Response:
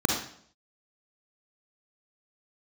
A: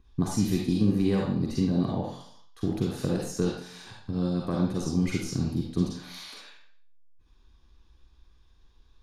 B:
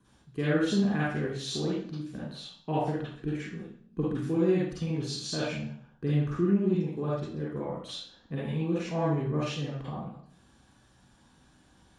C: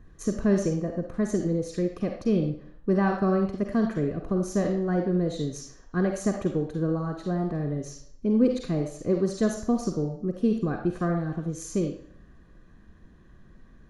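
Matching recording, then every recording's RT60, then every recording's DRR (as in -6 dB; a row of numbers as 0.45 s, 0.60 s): A; 0.60 s, 0.60 s, 0.60 s; -1.5 dB, -7.5 dB, 4.5 dB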